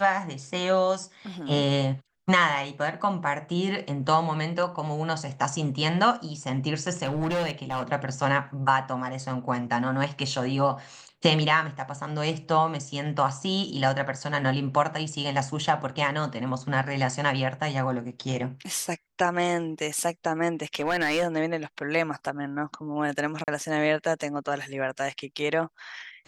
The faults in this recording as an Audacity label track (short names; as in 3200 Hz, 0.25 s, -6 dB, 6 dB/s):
7.040000	7.830000	clipped -23.5 dBFS
20.740000	21.240000	clipped -20.5 dBFS
23.440000	23.480000	gap 38 ms